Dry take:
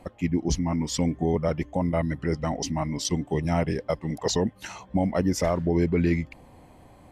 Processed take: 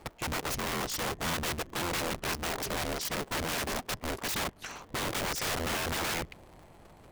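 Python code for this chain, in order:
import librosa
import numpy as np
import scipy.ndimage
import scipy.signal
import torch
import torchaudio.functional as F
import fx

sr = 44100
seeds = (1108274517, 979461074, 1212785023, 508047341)

y = fx.cycle_switch(x, sr, every=2, mode='inverted')
y = (np.mod(10.0 ** (24.5 / 20.0) * y + 1.0, 2.0) - 1.0) / 10.0 ** (24.5 / 20.0)
y = F.gain(torch.from_numpy(y), -3.0).numpy()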